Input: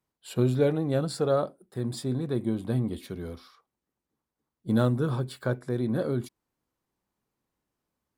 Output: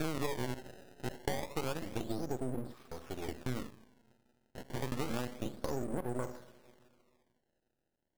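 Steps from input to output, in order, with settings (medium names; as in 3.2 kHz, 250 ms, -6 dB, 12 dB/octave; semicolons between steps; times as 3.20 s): slices played last to first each 182 ms, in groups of 5; peaking EQ 110 Hz -11.5 dB 1.4 oct; two-slope reverb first 0.43 s, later 2.6 s, from -22 dB, DRR 7.5 dB; compression 12:1, threshold -31 dBFS, peak gain reduction 12.5 dB; low-pass that closes with the level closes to 1.2 kHz, closed at -34 dBFS; decimation with a swept rate 22×, swing 160% 0.29 Hz; half-wave rectifier; trim +2 dB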